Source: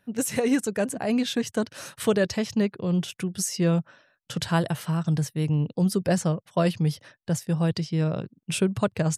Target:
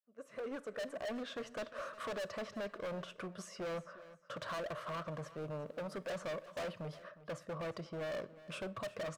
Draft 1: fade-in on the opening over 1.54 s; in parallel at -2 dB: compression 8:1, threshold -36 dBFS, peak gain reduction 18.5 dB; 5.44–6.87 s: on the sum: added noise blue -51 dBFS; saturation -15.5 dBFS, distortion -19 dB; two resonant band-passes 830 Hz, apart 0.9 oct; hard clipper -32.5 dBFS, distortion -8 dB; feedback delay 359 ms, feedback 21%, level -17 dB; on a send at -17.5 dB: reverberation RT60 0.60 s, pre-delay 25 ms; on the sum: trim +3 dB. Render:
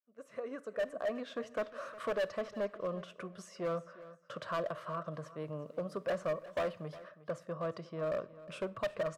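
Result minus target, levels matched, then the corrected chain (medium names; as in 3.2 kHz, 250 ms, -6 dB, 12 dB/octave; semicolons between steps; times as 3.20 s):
compression: peak gain reduction +10.5 dB; hard clipper: distortion -6 dB
fade-in on the opening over 1.54 s; in parallel at -2 dB: compression 8:1, threshold -24 dBFS, peak gain reduction 8 dB; 5.44–6.87 s: on the sum: added noise blue -51 dBFS; saturation -15.5 dBFS, distortion -17 dB; two resonant band-passes 830 Hz, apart 0.9 oct; hard clipper -41 dBFS, distortion -2 dB; feedback delay 359 ms, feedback 21%, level -17 dB; on a send at -17.5 dB: reverberation RT60 0.60 s, pre-delay 25 ms; on the sum: trim +3 dB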